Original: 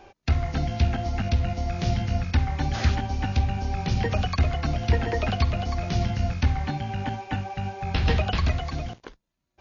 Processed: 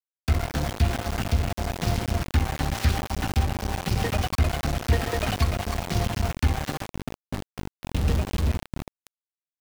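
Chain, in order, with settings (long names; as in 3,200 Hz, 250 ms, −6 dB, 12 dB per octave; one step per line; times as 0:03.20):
0:06.87–0:09.01: drawn EQ curve 240 Hz 0 dB, 1,600 Hz −16 dB, 2,400 Hz −11 dB
centre clipping without the shift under −25 dBFS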